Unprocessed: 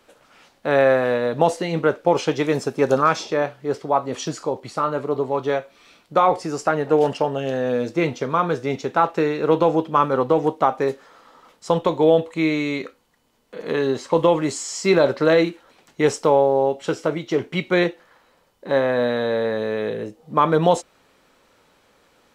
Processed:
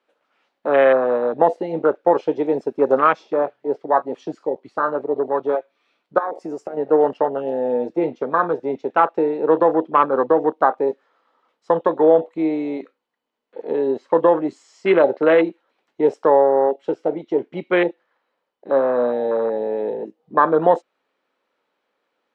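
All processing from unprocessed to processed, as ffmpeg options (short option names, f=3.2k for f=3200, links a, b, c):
-filter_complex "[0:a]asettb=1/sr,asplit=3[a][b][c];[a]atrim=end=6.184[d];[b]atrim=start=6.18:end=6.77,asetpts=PTS-STARTPTS,afade=t=in:d=0.004:c=qsin,afade=t=out:st=0.586:d=0.004:c=qsin,highshelf=f=5.3k:t=q:w=1.5:g=6.5,acompressor=threshold=-23dB:ratio=5:attack=3.2:release=140:knee=1:detection=peak,acrusher=bits=7:mode=log:mix=0:aa=0.000001[e];[c]atrim=start=6.766[f];[d][e]acrossfade=d=0.004:c1=hsin:c2=qsin[g];[g][f]acrossfade=d=0.004:c1=qsin:c2=hsin,afwtdn=0.0794,acrossover=split=230 4200:gain=0.0708 1 0.178[h][i][j];[h][i][j]amix=inputs=3:normalize=0,volume=2.5dB"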